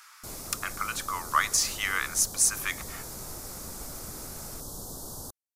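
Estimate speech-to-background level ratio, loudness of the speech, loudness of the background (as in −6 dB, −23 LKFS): 12.0 dB, −27.0 LKFS, −39.0 LKFS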